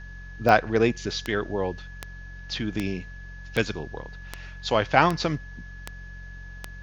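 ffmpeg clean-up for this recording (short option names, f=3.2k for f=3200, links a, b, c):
-af "adeclick=t=4,bandreject=f=45.2:t=h:w=4,bandreject=f=90.4:t=h:w=4,bandreject=f=135.6:t=h:w=4,bandreject=f=180.8:t=h:w=4,bandreject=f=1.7k:w=30,agate=range=-21dB:threshold=-32dB"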